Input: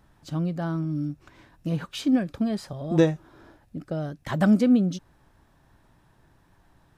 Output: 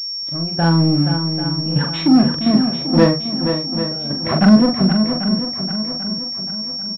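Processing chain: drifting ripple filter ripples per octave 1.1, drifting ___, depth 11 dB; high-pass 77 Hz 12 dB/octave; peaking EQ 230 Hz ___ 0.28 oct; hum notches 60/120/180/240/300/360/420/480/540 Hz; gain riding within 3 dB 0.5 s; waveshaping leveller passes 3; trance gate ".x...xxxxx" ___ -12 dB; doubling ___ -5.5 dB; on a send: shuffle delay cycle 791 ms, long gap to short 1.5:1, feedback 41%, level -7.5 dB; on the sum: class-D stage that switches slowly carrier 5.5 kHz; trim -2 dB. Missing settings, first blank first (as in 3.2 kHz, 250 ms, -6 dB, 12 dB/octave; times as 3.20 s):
+1.8 Hz, +9.5 dB, 128 bpm, 42 ms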